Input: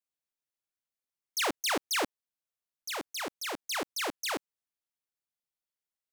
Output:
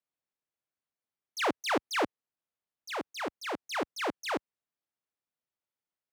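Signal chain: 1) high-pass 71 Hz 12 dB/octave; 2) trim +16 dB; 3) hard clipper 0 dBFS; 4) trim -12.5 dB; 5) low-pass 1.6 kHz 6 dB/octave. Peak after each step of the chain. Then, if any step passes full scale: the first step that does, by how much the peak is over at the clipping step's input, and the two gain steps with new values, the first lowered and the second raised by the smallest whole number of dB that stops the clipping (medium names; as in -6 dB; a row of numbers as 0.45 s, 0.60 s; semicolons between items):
-20.5 dBFS, -4.5 dBFS, -4.5 dBFS, -17.0 dBFS, -19.0 dBFS; nothing clips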